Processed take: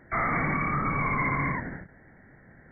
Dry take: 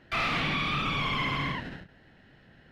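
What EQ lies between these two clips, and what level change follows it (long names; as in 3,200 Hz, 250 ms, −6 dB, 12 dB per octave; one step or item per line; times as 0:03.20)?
linear-phase brick-wall low-pass 2,300 Hz
+3.5 dB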